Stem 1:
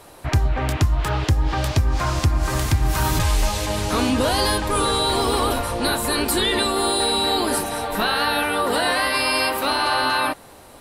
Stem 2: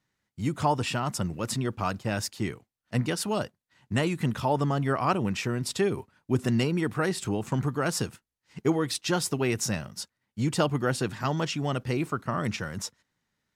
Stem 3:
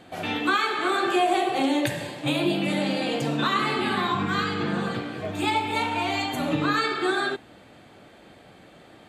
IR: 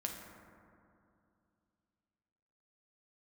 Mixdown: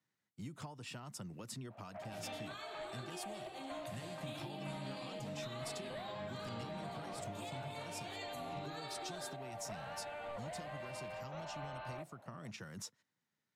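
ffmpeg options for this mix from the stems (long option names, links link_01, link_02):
-filter_complex "[0:a]highpass=frequency=640:width_type=q:width=7.9,asoftclip=type=tanh:threshold=-12dB,lowpass=frequency=2600:width=0.5412,lowpass=frequency=2600:width=1.3066,adelay=1700,volume=-11dB[link_01];[1:a]highpass=frequency=110:width=0.5412,highpass=frequency=110:width=1.3066,acompressor=threshold=-33dB:ratio=6,volume=-9dB,asplit=2[link_02][link_03];[2:a]alimiter=limit=-20.5dB:level=0:latency=1:release=298,highpass=frequency=89:width=0.5412,highpass=frequency=89:width=1.3066,acompressor=threshold=-51dB:ratio=1.5,adelay=2000,volume=-4.5dB[link_04];[link_03]apad=whole_len=551502[link_05];[link_01][link_05]sidechaincompress=threshold=-51dB:ratio=3:attack=16:release=1150[link_06];[link_06][link_02][link_04]amix=inputs=3:normalize=0,acrossover=split=190|3000[link_07][link_08][link_09];[link_08]acompressor=threshold=-50dB:ratio=2.5[link_10];[link_07][link_10][link_09]amix=inputs=3:normalize=0"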